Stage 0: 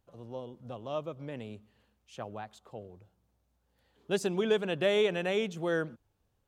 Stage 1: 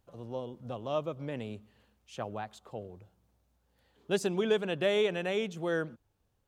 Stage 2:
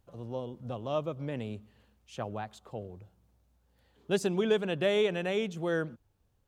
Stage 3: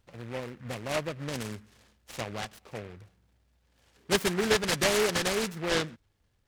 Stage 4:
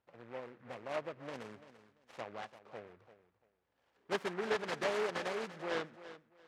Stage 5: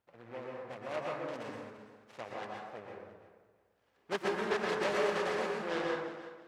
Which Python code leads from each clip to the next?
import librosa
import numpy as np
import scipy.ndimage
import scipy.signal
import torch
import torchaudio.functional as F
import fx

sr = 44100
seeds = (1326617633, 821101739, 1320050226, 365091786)

y1 = fx.rider(x, sr, range_db=3, speed_s=2.0)
y2 = fx.low_shelf(y1, sr, hz=190.0, db=5.0)
y3 = fx.small_body(y2, sr, hz=(1700.0, 2700.0), ring_ms=35, db=18)
y3 = fx.noise_mod_delay(y3, sr, seeds[0], noise_hz=1500.0, depth_ms=0.14)
y4 = fx.bandpass_q(y3, sr, hz=820.0, q=0.64)
y4 = fx.echo_feedback(y4, sr, ms=340, feedback_pct=23, wet_db=-14.5)
y4 = y4 * librosa.db_to_amplitude(-6.0)
y5 = fx.rev_plate(y4, sr, seeds[1], rt60_s=1.1, hf_ratio=0.45, predelay_ms=105, drr_db=-1.5)